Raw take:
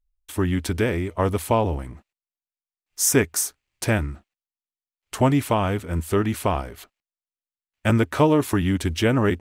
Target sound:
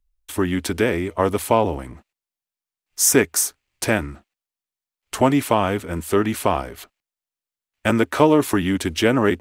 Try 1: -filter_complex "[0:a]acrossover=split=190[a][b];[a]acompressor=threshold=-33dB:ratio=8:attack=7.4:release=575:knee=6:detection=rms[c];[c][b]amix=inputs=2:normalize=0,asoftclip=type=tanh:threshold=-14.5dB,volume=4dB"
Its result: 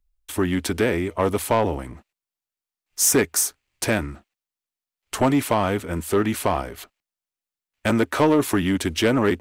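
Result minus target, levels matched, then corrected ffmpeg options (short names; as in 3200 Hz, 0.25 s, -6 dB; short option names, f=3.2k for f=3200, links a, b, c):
soft clip: distortion +17 dB
-filter_complex "[0:a]acrossover=split=190[a][b];[a]acompressor=threshold=-33dB:ratio=8:attack=7.4:release=575:knee=6:detection=rms[c];[c][b]amix=inputs=2:normalize=0,asoftclip=type=tanh:threshold=-3dB,volume=4dB"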